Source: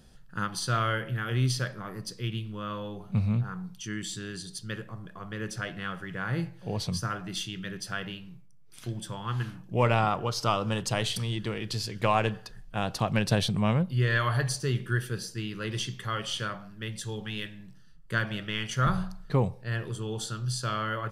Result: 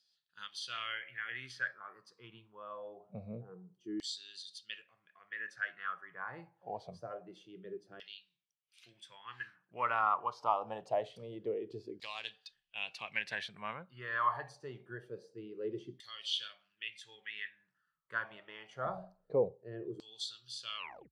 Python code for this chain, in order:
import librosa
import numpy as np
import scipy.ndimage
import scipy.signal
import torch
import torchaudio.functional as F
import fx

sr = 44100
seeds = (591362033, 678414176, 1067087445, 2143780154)

y = fx.tape_stop_end(x, sr, length_s=0.34)
y = fx.noise_reduce_blind(y, sr, reduce_db=8)
y = fx.filter_lfo_bandpass(y, sr, shape='saw_down', hz=0.25, low_hz=330.0, high_hz=4600.0, q=4.2)
y = y * librosa.db_to_amplitude(3.0)